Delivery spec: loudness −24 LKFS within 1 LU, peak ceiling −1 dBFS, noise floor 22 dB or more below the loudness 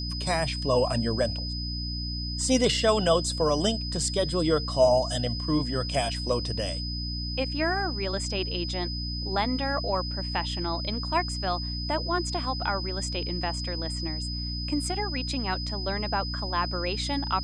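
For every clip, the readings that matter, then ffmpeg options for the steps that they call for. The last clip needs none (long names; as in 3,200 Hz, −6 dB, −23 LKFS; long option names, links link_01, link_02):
mains hum 60 Hz; hum harmonics up to 300 Hz; level of the hum −31 dBFS; interfering tone 5,000 Hz; level of the tone −34 dBFS; integrated loudness −27.5 LKFS; sample peak −9.5 dBFS; target loudness −24.0 LKFS
→ -af "bandreject=frequency=60:width_type=h:width=4,bandreject=frequency=120:width_type=h:width=4,bandreject=frequency=180:width_type=h:width=4,bandreject=frequency=240:width_type=h:width=4,bandreject=frequency=300:width_type=h:width=4"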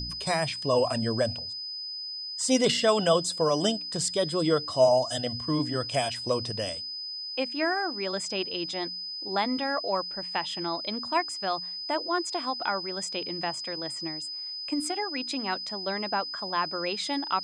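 mains hum none found; interfering tone 5,000 Hz; level of the tone −34 dBFS
→ -af "bandreject=frequency=5000:width=30"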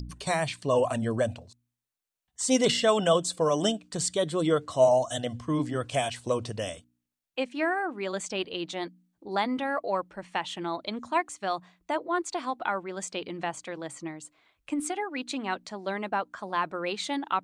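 interfering tone none found; integrated loudness −29.0 LKFS; sample peak −10.5 dBFS; target loudness −24.0 LKFS
→ -af "volume=5dB"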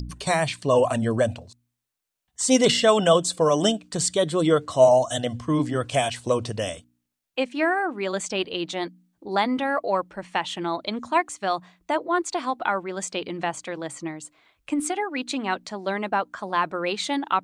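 integrated loudness −24.0 LKFS; sample peak −5.5 dBFS; background noise floor −80 dBFS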